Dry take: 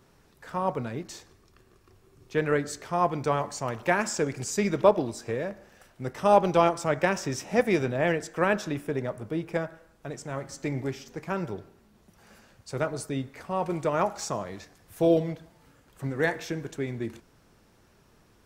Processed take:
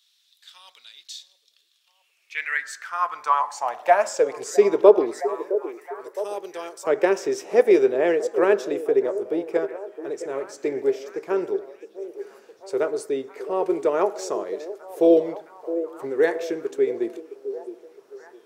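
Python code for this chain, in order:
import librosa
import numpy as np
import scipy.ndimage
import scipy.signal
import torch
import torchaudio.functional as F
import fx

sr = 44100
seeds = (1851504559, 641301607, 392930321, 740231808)

y = fx.filter_sweep_highpass(x, sr, from_hz=3600.0, to_hz=400.0, start_s=1.73, end_s=4.56, q=5.8)
y = fx.pre_emphasis(y, sr, coefficient=0.9, at=(5.2, 6.87))
y = fx.echo_stepped(y, sr, ms=663, hz=410.0, octaves=0.7, feedback_pct=70, wet_db=-10.5)
y = y * 10.0 ** (-1.0 / 20.0)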